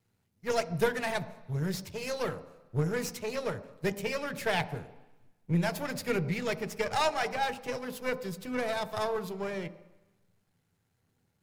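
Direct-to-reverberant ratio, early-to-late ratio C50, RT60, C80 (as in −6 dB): 11.0 dB, 15.0 dB, 1.0 s, 16.5 dB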